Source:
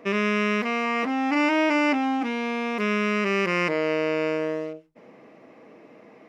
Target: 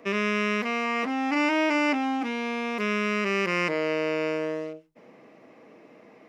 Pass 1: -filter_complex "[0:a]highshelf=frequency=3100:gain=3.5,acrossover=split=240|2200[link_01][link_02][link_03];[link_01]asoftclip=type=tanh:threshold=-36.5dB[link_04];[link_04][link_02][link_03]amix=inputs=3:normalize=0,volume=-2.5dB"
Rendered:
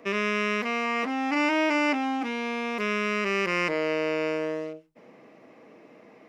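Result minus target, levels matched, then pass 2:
soft clipping: distortion +13 dB
-filter_complex "[0:a]highshelf=frequency=3100:gain=3.5,acrossover=split=240|2200[link_01][link_02][link_03];[link_01]asoftclip=type=tanh:threshold=-26.5dB[link_04];[link_04][link_02][link_03]amix=inputs=3:normalize=0,volume=-2.5dB"

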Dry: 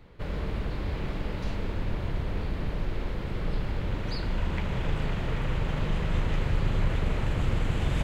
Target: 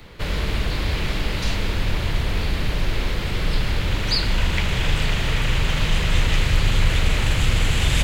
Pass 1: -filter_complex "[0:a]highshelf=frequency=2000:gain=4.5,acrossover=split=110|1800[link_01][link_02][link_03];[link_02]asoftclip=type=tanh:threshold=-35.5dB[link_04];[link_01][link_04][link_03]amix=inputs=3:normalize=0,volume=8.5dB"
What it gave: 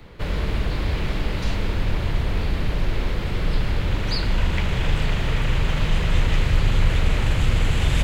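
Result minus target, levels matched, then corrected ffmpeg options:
4,000 Hz band −4.5 dB
-filter_complex "[0:a]highshelf=frequency=2000:gain=12.5,acrossover=split=110|1800[link_01][link_02][link_03];[link_02]asoftclip=type=tanh:threshold=-35.5dB[link_04];[link_01][link_04][link_03]amix=inputs=3:normalize=0,volume=8.5dB"

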